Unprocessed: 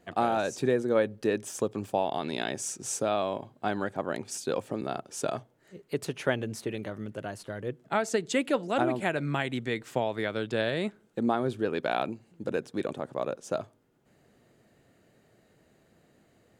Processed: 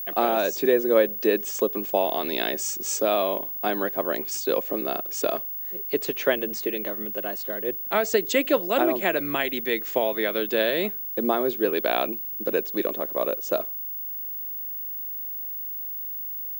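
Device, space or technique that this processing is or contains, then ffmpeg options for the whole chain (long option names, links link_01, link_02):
old television with a line whistle: -af "highpass=frequency=230:width=0.5412,highpass=frequency=230:width=1.3066,equalizer=frequency=250:width_type=q:width=4:gain=-6,equalizer=frequency=840:width_type=q:width=4:gain=-6,equalizer=frequency=1400:width_type=q:width=4:gain=-5,lowpass=frequency=7500:width=0.5412,lowpass=frequency=7500:width=1.3066,aeval=exprs='val(0)+0.0141*sin(2*PI*15625*n/s)':channel_layout=same,volume=7dB"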